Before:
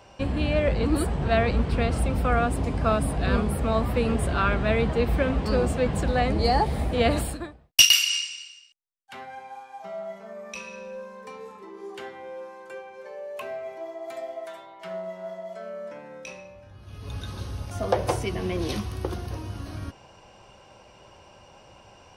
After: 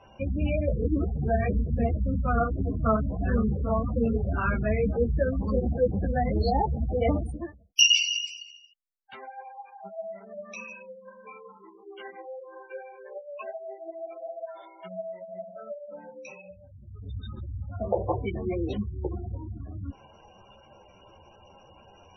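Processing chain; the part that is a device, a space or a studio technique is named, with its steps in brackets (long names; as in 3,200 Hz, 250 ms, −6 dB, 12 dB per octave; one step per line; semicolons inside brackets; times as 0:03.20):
gate on every frequency bin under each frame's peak −15 dB strong
0:10.63–0:12.08: tilt shelving filter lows −7 dB, about 1,400 Hz
string-machine ensemble chorus (string-ensemble chorus; low-pass filter 6,900 Hz 12 dB per octave)
level +1.5 dB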